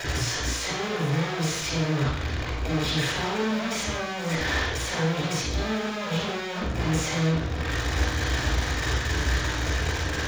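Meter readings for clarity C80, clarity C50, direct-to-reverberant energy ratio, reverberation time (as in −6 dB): 3.0 dB, −0.5 dB, −5.0 dB, 0.70 s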